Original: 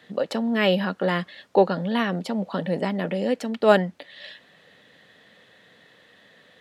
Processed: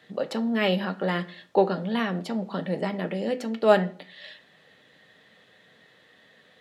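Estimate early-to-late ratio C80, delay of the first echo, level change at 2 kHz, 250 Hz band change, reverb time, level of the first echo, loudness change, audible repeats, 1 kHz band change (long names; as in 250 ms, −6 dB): 21.5 dB, no echo audible, −3.0 dB, −2.5 dB, 0.50 s, no echo audible, −2.5 dB, no echo audible, −2.5 dB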